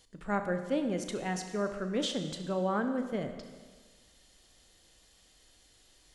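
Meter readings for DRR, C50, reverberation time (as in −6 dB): 6.5 dB, 8.0 dB, 1.5 s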